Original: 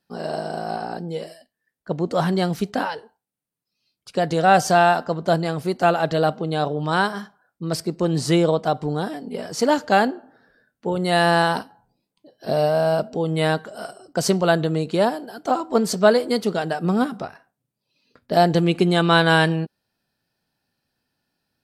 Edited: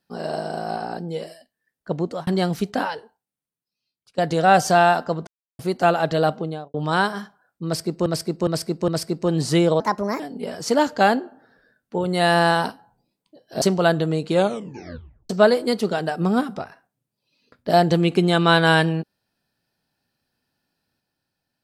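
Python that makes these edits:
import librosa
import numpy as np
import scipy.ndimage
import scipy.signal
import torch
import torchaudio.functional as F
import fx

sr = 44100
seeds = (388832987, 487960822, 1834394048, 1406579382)

y = fx.studio_fade_out(x, sr, start_s=6.35, length_s=0.39)
y = fx.edit(y, sr, fx.fade_out_span(start_s=2.01, length_s=0.26),
    fx.fade_out_to(start_s=2.91, length_s=1.27, floor_db=-17.5),
    fx.silence(start_s=5.27, length_s=0.32),
    fx.repeat(start_s=7.65, length_s=0.41, count=4),
    fx.speed_span(start_s=8.57, length_s=0.54, speed=1.36),
    fx.cut(start_s=12.53, length_s=1.72),
    fx.tape_stop(start_s=14.93, length_s=1.0), tone=tone)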